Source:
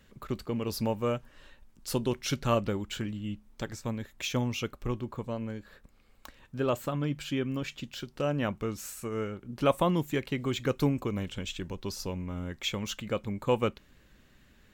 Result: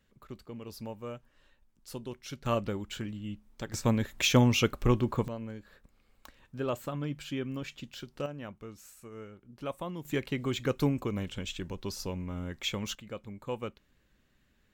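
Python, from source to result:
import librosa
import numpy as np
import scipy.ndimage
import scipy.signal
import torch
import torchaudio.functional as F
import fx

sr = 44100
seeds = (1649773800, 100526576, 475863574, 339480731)

y = fx.gain(x, sr, db=fx.steps((0.0, -11.0), (2.46, -3.0), (3.74, 7.5), (5.28, -4.0), (8.26, -12.0), (10.05, -1.0), (12.95, -9.5)))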